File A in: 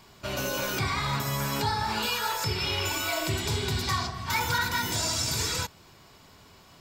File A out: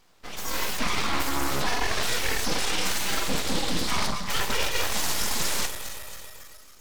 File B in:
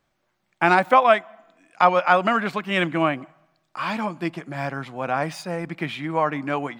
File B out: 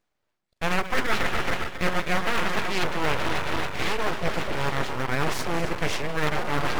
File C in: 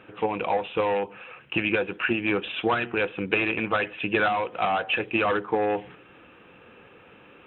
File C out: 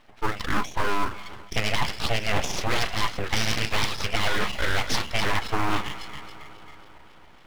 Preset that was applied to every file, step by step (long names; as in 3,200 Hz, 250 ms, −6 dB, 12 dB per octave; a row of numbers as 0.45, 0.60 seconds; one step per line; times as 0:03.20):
feedback delay that plays each chunk backwards 137 ms, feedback 84%, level −12 dB
noise reduction from a noise print of the clip's start 15 dB
in parallel at −12 dB: decimation without filtering 13×
on the sum: full-wave rectification
reversed playback
downward compressor 6 to 1, threshold −28 dBFS
reversed playback
highs frequency-modulated by the lows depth 0.42 ms
loudness normalisation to −27 LKFS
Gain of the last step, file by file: +8.5, +8.5, +9.5 decibels